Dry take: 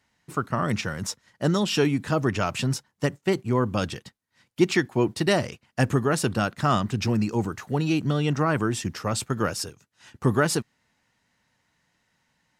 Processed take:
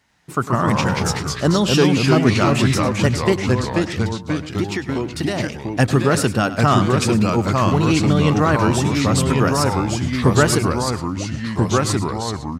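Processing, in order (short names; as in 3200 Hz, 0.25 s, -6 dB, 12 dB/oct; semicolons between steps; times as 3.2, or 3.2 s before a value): 3.33–5.4 compressor 6:1, threshold -27 dBFS, peak gain reduction 13 dB; echo 0.1 s -14.5 dB; echoes that change speed 85 ms, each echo -2 st, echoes 3; gain +6 dB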